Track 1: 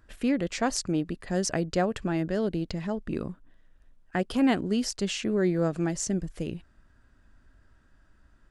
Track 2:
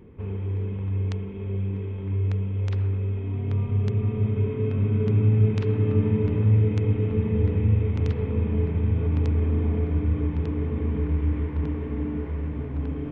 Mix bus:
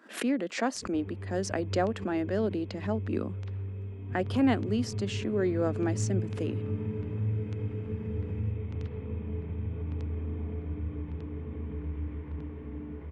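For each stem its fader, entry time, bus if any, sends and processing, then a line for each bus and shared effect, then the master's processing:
−2.0 dB, 0.00 s, no send, Butterworth high-pass 200 Hz 48 dB per octave; high-shelf EQ 4,200 Hz −9 dB; speech leveller 2 s
−11.5 dB, 0.75 s, no send, no processing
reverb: not used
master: background raised ahead of every attack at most 140 dB per second

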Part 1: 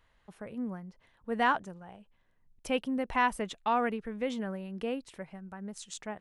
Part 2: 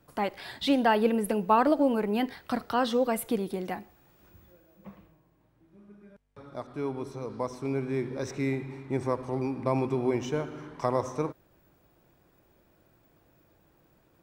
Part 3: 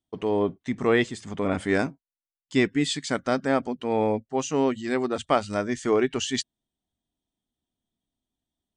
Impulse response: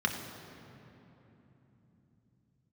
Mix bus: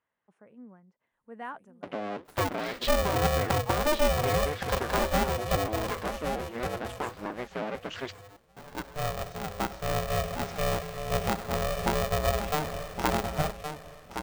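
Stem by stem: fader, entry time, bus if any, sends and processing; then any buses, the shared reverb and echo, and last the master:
−11.5 dB, 0.00 s, bus A, no send, echo send −12.5 dB, high shelf with overshoot 5,900 Hz +13.5 dB, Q 1.5
+1.0 dB, 2.20 s, no bus, no send, echo send −8 dB, treble cut that deepens with the level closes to 450 Hz, closed at −22 dBFS; noise gate with hold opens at −54 dBFS; ring modulator with a square carrier 300 Hz
+0.5 dB, 1.70 s, bus A, no send, no echo send, sub-harmonics by changed cycles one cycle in 2, inverted; flanger 1.4 Hz, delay 1.4 ms, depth 8 ms, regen +78%
bus A: 0.0 dB, band-pass filter 170–2,700 Hz; downward compressor 6 to 1, threshold −31 dBFS, peak gain reduction 11 dB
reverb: not used
echo: repeating echo 1,118 ms, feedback 18%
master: no processing

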